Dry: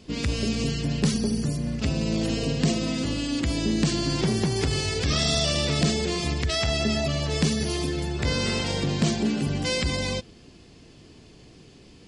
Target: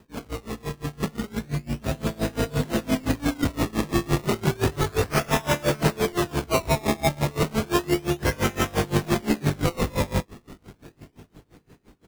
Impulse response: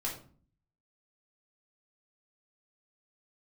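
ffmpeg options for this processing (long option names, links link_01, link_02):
-filter_complex "[0:a]highshelf=frequency=5800:gain=-9,acrossover=split=290[link_01][link_02];[link_01]alimiter=level_in=2dB:limit=-24dB:level=0:latency=1:release=154,volume=-2dB[link_03];[link_03][link_02]amix=inputs=2:normalize=0,dynaudnorm=framelen=300:gausssize=11:maxgain=10.5dB,aresample=16000,asoftclip=type=hard:threshold=-16dB,aresample=44100,aecho=1:1:20|46:0.668|0.224,acrusher=samples=20:mix=1:aa=0.000001:lfo=1:lforange=20:lforate=0.32,aeval=exprs='val(0)*pow(10,-25*(0.5-0.5*cos(2*PI*5.8*n/s))/20)':channel_layout=same"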